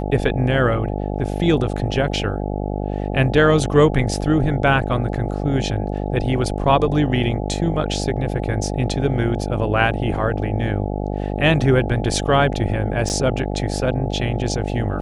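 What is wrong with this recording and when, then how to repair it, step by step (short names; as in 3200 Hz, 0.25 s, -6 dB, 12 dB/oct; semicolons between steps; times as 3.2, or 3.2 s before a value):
buzz 50 Hz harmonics 17 -24 dBFS
13.09–13.1 gap 9.1 ms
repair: de-hum 50 Hz, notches 17; interpolate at 13.09, 9.1 ms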